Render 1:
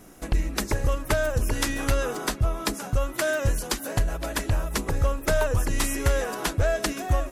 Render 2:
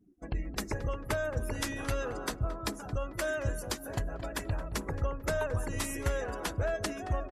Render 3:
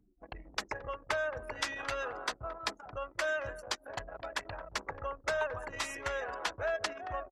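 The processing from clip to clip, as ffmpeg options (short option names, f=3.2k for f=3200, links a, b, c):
-filter_complex "[0:a]afftdn=nr=33:nf=-39,highpass=47,asplit=2[a][b];[b]adelay=222,lowpass=f=1.5k:p=1,volume=-11dB,asplit=2[c][d];[d]adelay=222,lowpass=f=1.5k:p=1,volume=0.44,asplit=2[e][f];[f]adelay=222,lowpass=f=1.5k:p=1,volume=0.44,asplit=2[g][h];[h]adelay=222,lowpass=f=1.5k:p=1,volume=0.44,asplit=2[i][j];[j]adelay=222,lowpass=f=1.5k:p=1,volume=0.44[k];[c][e][g][i][k]amix=inputs=5:normalize=0[l];[a][l]amix=inputs=2:normalize=0,volume=-7.5dB"
-filter_complex "[0:a]anlmdn=0.631,acrossover=split=570 6700:gain=0.112 1 0.0891[a][b][c];[a][b][c]amix=inputs=3:normalize=0,acompressor=mode=upward:threshold=-52dB:ratio=2.5,volume=3dB"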